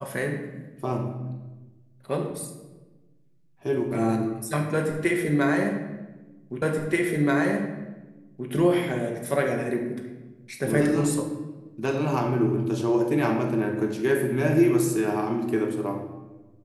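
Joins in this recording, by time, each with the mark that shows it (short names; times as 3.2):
6.62 repeat of the last 1.88 s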